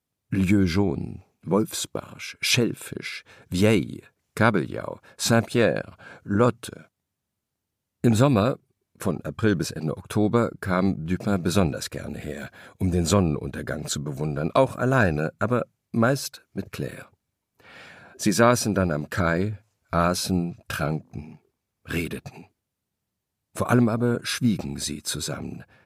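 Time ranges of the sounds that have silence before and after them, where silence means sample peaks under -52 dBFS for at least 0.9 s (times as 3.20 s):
8.04–22.47 s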